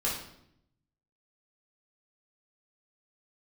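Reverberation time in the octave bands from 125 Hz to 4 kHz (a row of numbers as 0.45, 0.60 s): 1.2, 1.0, 0.80, 0.70, 0.65, 0.60 s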